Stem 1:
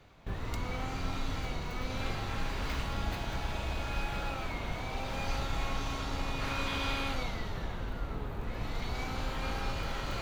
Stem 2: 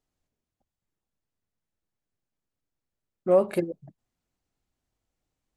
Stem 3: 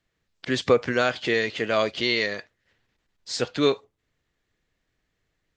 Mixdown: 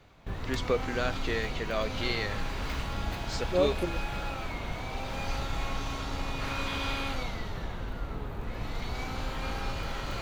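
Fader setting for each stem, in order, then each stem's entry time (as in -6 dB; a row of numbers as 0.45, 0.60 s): +1.0, -6.5, -9.0 dB; 0.00, 0.25, 0.00 s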